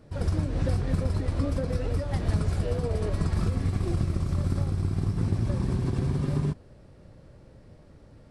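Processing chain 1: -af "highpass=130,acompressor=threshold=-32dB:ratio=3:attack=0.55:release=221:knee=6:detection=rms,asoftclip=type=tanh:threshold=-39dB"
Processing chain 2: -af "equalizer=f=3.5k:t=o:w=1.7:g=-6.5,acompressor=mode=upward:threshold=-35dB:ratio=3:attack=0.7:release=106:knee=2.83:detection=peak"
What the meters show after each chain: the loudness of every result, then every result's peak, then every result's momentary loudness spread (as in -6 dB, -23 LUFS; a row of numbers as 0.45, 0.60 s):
-43.5, -28.5 LUFS; -39.0, -15.5 dBFS; 13, 19 LU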